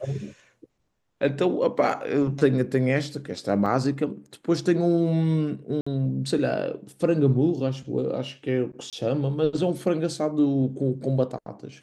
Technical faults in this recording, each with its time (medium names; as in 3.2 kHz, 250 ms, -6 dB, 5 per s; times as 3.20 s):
3.66–3.67 s: dropout 5.2 ms
5.81–5.87 s: dropout 55 ms
8.90–8.93 s: dropout 27 ms